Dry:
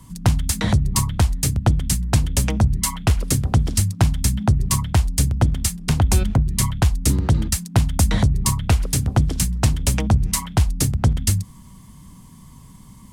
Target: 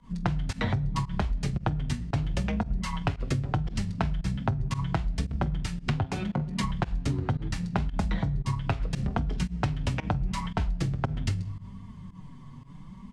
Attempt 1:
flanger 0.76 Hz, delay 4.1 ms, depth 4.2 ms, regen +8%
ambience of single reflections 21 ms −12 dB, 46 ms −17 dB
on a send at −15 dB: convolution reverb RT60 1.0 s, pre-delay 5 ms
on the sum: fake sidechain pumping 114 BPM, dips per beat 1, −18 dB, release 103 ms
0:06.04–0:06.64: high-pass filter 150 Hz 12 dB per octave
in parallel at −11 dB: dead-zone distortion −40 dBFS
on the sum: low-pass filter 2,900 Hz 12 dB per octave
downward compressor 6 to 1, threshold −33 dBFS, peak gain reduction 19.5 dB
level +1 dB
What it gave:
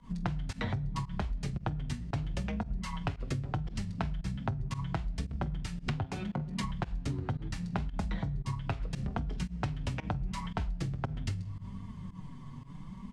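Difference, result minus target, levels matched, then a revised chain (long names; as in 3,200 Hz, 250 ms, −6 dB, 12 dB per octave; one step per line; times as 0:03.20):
downward compressor: peak gain reduction +6.5 dB; dead-zone distortion: distortion −7 dB
flanger 0.76 Hz, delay 4.1 ms, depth 4.2 ms, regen +8%
ambience of single reflections 21 ms −12 dB, 46 ms −17 dB
on a send at −15 dB: convolution reverb RT60 1.0 s, pre-delay 5 ms
on the sum: fake sidechain pumping 114 BPM, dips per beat 1, −18 dB, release 103 ms
0:06.04–0:06.64: high-pass filter 150 Hz 12 dB per octave
in parallel at −11 dB: dead-zone distortion −32.5 dBFS
on the sum: low-pass filter 2,900 Hz 12 dB per octave
downward compressor 6 to 1, threshold −25.5 dBFS, peak gain reduction 13 dB
level +1 dB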